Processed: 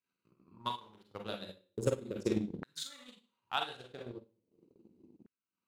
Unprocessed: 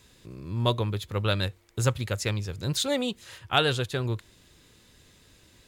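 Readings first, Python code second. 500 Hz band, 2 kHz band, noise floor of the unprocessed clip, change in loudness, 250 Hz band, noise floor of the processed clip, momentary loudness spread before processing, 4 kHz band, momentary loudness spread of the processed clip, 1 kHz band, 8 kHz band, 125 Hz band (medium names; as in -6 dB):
-9.0 dB, -14.5 dB, -59 dBFS, -11.0 dB, -7.5 dB, under -85 dBFS, 11 LU, -13.5 dB, 14 LU, -9.0 dB, -14.0 dB, -18.0 dB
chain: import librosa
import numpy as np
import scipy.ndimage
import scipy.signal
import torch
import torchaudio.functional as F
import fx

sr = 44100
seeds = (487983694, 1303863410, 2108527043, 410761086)

y = fx.wiener(x, sr, points=25)
y = fx.curve_eq(y, sr, hz=(220.0, 650.0, 5800.0), db=(0, -27, -19))
y = fx.rev_schroeder(y, sr, rt60_s=0.48, comb_ms=33, drr_db=-2.0)
y = fx.filter_lfo_highpass(y, sr, shape='saw_down', hz=0.38, low_hz=290.0, high_hz=1600.0, q=3.5)
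y = fx.transient(y, sr, attack_db=11, sustain_db=-10)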